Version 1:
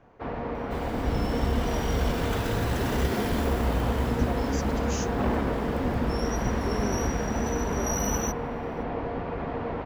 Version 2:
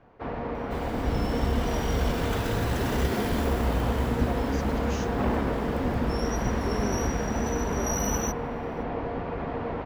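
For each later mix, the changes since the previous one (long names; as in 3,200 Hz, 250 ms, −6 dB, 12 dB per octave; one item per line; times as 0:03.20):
speech: add low-pass filter 4,300 Hz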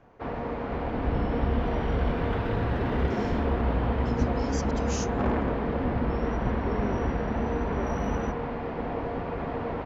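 speech: remove low-pass filter 4,300 Hz
second sound: add high-frequency loss of the air 380 metres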